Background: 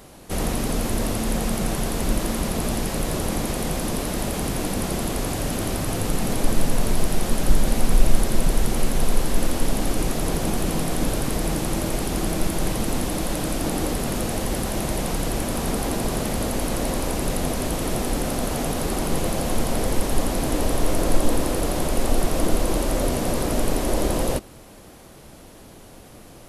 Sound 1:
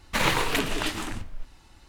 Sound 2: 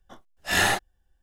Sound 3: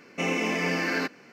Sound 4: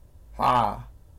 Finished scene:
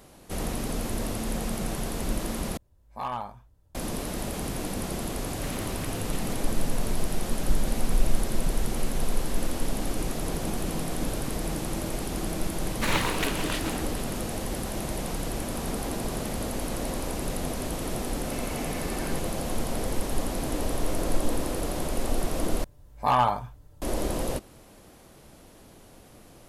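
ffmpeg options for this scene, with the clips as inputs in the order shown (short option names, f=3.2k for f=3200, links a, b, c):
-filter_complex "[4:a]asplit=2[a][b];[1:a]asplit=2[c][d];[0:a]volume=-6.5dB[e];[c]acompressor=threshold=-26dB:ratio=6:attack=3.2:release=140:knee=1:detection=peak[f];[d]aecho=1:1:452:0.2[g];[b]aecho=1:1:6.8:0.41[h];[e]asplit=3[i][j][k];[i]atrim=end=2.574[l];[a]atrim=end=1.18,asetpts=PTS-STARTPTS,volume=-11.5dB[m];[j]atrim=start=3.746:end=22.644[n];[h]atrim=end=1.18,asetpts=PTS-STARTPTS,volume=-1dB[o];[k]atrim=start=23.816[p];[f]atrim=end=1.88,asetpts=PTS-STARTPTS,volume=-11.5dB,afade=t=in:d=0.004:c=hsin,afade=t=out:st=1.876:d=0.004:c=hsin,adelay=233289S[q];[g]atrim=end=1.88,asetpts=PTS-STARTPTS,volume=-3.5dB,afade=t=in:d=0.004:c=hsin,afade=t=out:st=1.876:d=0.004:c=hsin,adelay=559188S[r];[3:a]atrim=end=1.32,asetpts=PTS-STARTPTS,volume=-14.5dB,afade=t=in:d=0.004:c=hsin,afade=t=out:st=1.316:d=0.004:c=hsin,adelay=799092S[s];[l][m]acrossfade=d=0.004:c1=hsin:c2=hsin[t];[t][n]acrossfade=d=0.004:c1=hsin:c2=hsin[u];[u][o]acrossfade=d=0.004:c1=hsin:c2=hsin[v];[v][p]acrossfade=d=0.004:c1=hsin:c2=hsin[w];[w][q][r][s]amix=inputs=4:normalize=0"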